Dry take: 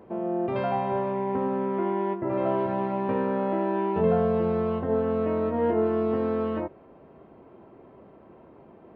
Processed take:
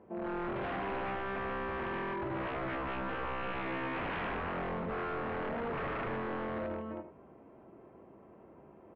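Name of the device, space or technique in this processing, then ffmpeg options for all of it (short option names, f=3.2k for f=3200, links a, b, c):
synthesiser wavefolder: -filter_complex "[0:a]asettb=1/sr,asplit=3[a][b][c];[a]atrim=end=1.154[d];[b]atrim=start=1.15:end=2.55,asetpts=PTS-STARTPTS,afade=t=in:d=0.004:c=qsin,afade=t=out:st=1.396:d=0.004:c=qsin,lowshelf=f=120:t=q:w=1.5:g=12[e];[c]atrim=start=2.546[f];[d][e]acrossfade=d=0.004:c1=hsin:c2=qsin[g];[g][f]acrossfade=d=0.004:c1=qsin:c2=hsin,aecho=1:1:40|82|143|340|430:0.316|0.531|0.531|0.631|0.2,aeval=exprs='0.0708*(abs(mod(val(0)/0.0708+3,4)-2)-1)':c=same,lowpass=f=3k:w=0.5412,lowpass=f=3k:w=1.3066,volume=-8.5dB"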